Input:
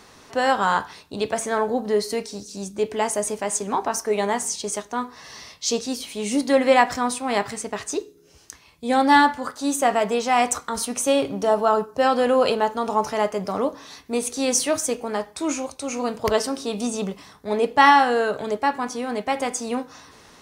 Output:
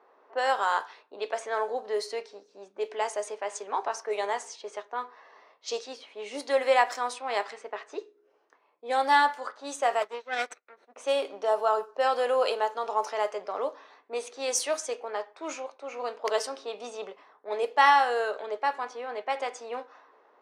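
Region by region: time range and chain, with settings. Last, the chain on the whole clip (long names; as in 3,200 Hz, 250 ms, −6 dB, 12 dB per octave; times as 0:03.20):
0:10.02–0:10.96: lower of the sound and its delayed copy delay 0.51 ms + expander for the loud parts 2.5 to 1, over −40 dBFS
whole clip: low-pass that shuts in the quiet parts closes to 940 Hz, open at −16 dBFS; high-pass filter 420 Hz 24 dB per octave; high-shelf EQ 9,700 Hz −3.5 dB; level −5.5 dB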